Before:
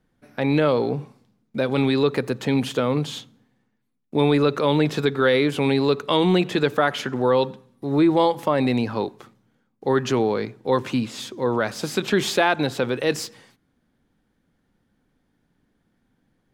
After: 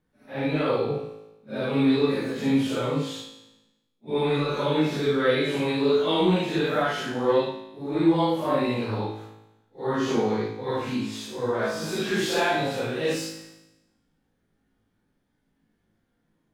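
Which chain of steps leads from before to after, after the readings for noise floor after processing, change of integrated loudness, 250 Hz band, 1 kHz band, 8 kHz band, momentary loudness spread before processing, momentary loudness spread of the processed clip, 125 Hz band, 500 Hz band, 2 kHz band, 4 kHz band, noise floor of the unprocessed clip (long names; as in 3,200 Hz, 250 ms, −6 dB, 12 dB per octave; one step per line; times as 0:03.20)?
−73 dBFS, −3.5 dB, −3.0 dB, −4.0 dB, −3.5 dB, 10 LU, 11 LU, −4.5 dB, −3.5 dB, −3.5 dB, −3.0 dB, −70 dBFS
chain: random phases in long frames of 200 ms
tuned comb filter 54 Hz, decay 0.98 s, harmonics all, mix 80%
level +6 dB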